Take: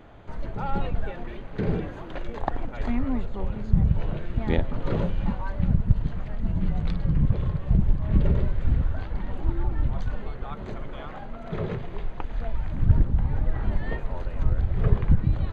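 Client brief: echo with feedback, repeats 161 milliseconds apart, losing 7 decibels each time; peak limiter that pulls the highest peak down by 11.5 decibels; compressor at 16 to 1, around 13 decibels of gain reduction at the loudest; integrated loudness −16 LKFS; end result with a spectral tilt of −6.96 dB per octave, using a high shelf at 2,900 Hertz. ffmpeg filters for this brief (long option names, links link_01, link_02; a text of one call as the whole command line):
ffmpeg -i in.wav -af "highshelf=frequency=2900:gain=4,acompressor=threshold=-25dB:ratio=16,alimiter=level_in=1dB:limit=-24dB:level=0:latency=1,volume=-1dB,aecho=1:1:161|322|483|644|805:0.447|0.201|0.0905|0.0407|0.0183,volume=21dB" out.wav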